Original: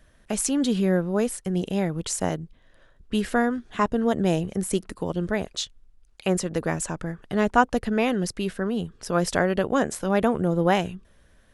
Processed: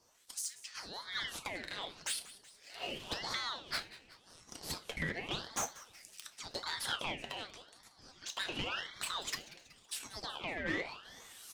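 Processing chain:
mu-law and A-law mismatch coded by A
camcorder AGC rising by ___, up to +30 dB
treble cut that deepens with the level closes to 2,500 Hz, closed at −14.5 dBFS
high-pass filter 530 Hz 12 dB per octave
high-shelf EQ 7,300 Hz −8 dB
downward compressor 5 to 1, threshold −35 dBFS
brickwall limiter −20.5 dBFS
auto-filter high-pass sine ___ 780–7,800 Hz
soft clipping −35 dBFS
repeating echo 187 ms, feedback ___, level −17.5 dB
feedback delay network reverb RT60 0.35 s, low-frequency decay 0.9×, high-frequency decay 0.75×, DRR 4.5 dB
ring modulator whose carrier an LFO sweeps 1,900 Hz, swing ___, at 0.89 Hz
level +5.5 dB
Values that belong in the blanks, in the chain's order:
38 dB per second, 0.54 Hz, 59%, 45%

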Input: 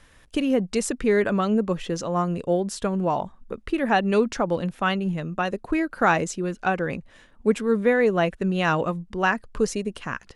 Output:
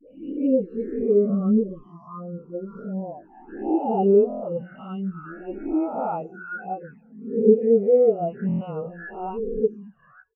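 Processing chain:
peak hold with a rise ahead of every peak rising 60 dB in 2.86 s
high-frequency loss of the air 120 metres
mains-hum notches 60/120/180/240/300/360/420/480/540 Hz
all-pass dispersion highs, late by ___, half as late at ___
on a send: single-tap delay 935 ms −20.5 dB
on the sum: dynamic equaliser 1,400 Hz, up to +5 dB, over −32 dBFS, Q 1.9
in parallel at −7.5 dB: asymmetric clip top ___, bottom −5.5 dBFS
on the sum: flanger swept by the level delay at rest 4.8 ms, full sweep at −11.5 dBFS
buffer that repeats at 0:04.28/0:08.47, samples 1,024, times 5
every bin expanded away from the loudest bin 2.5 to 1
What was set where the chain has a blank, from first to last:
77 ms, 640 Hz, −13.5 dBFS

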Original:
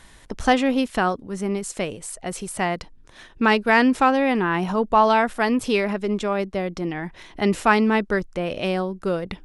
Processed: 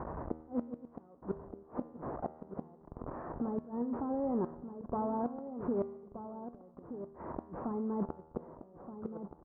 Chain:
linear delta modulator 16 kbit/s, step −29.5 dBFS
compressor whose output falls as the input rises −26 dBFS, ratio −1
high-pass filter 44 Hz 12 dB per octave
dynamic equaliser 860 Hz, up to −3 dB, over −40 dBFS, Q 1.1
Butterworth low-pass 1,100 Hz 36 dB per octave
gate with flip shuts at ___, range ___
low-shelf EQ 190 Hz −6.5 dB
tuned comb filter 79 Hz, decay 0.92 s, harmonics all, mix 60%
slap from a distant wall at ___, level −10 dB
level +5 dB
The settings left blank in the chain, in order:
−20 dBFS, −29 dB, 210 metres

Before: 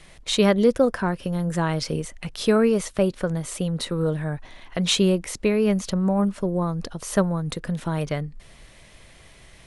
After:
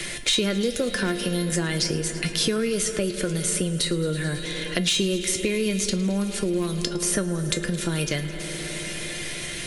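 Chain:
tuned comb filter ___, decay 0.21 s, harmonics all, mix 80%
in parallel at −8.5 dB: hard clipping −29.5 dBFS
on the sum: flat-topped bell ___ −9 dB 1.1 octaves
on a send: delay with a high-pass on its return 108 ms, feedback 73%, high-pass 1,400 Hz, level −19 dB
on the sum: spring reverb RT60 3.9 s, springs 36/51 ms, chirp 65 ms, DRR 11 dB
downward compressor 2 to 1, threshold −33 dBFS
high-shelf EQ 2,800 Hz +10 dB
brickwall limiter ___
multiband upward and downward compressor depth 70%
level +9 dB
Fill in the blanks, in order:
350 Hz, 890 Hz, −20 dBFS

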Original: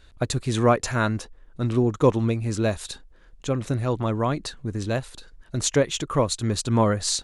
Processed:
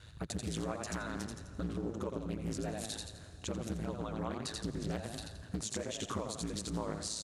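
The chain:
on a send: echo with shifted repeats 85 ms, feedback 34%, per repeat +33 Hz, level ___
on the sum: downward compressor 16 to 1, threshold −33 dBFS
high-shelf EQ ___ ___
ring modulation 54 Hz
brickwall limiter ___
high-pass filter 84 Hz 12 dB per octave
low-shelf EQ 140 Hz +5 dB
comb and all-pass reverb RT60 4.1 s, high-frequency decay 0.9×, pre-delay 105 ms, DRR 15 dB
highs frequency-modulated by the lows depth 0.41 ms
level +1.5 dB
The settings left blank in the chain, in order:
−7 dB, 5,600 Hz, +6.5 dB, −28.5 dBFS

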